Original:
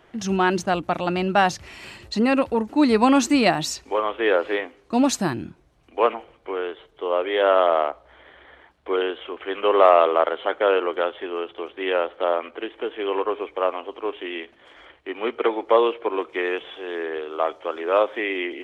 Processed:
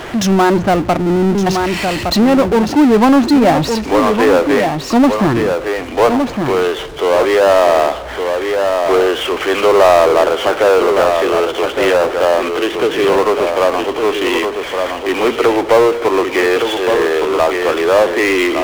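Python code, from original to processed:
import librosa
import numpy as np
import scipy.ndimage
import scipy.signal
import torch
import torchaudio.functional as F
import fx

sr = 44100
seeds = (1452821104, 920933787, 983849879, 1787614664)

y = fx.spec_erase(x, sr, start_s=0.98, length_s=0.49, low_hz=460.0, high_hz=9700.0)
y = fx.env_lowpass_down(y, sr, base_hz=1200.0, full_db=-17.5)
y = y + 10.0 ** (-10.0 / 20.0) * np.pad(y, (int(1163 * sr / 1000.0), 0))[:len(y)]
y = fx.power_curve(y, sr, exponent=0.5)
y = fx.peak_eq(y, sr, hz=160.0, db=9.5, octaves=0.77, at=(12.73, 13.17))
y = y * 10.0 ** (3.0 / 20.0)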